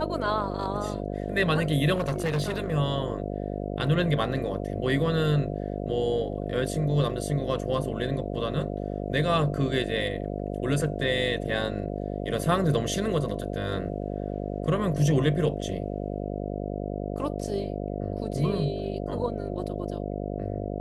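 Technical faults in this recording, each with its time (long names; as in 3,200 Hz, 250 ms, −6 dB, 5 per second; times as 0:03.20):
mains buzz 50 Hz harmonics 14 −32 dBFS
0:01.94–0:02.73: clipping −22.5 dBFS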